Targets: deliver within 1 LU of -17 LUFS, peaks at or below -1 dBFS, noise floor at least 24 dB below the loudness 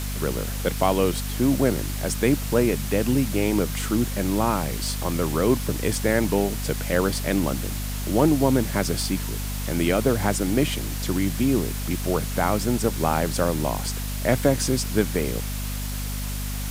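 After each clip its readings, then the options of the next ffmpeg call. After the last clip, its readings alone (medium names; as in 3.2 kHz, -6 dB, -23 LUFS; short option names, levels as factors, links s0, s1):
hum 50 Hz; highest harmonic 250 Hz; hum level -27 dBFS; noise floor -29 dBFS; noise floor target -48 dBFS; loudness -24.0 LUFS; peak level -5.5 dBFS; loudness target -17.0 LUFS
-> -af "bandreject=f=50:t=h:w=6,bandreject=f=100:t=h:w=6,bandreject=f=150:t=h:w=6,bandreject=f=200:t=h:w=6,bandreject=f=250:t=h:w=6"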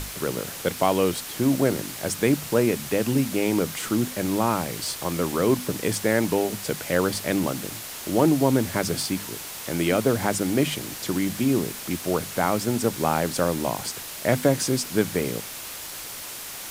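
hum not found; noise floor -37 dBFS; noise floor target -49 dBFS
-> -af "afftdn=nr=12:nf=-37"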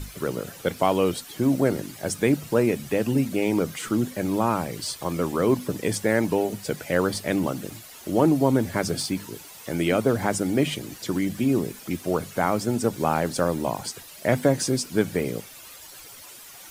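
noise floor -44 dBFS; noise floor target -49 dBFS
-> -af "afftdn=nr=6:nf=-44"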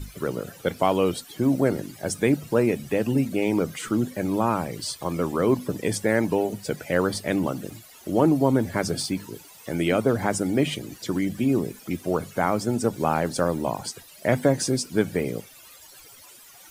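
noise floor -49 dBFS; loudness -25.0 LUFS; peak level -6.5 dBFS; loudness target -17.0 LUFS
-> -af "volume=2.51,alimiter=limit=0.891:level=0:latency=1"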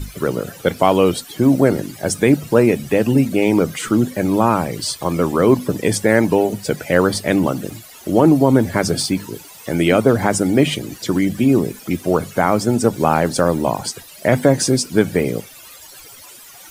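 loudness -17.0 LUFS; peak level -1.0 dBFS; noise floor -41 dBFS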